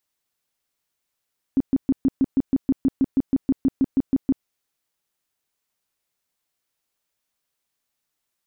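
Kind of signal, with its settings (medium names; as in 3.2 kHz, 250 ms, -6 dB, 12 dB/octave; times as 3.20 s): tone bursts 268 Hz, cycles 9, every 0.16 s, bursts 18, -14 dBFS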